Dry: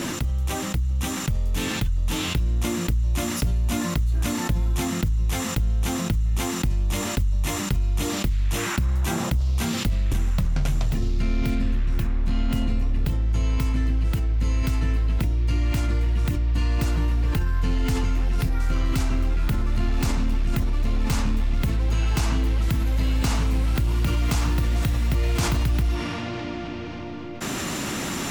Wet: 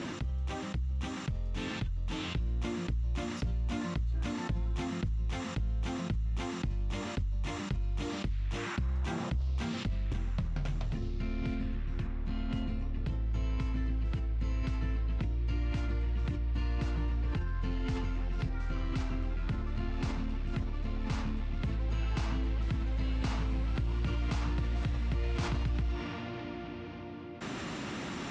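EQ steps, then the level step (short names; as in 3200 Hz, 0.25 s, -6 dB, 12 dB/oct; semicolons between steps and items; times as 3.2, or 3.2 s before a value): HPF 42 Hz; LPF 7100 Hz 12 dB/oct; air absorption 98 m; -9.0 dB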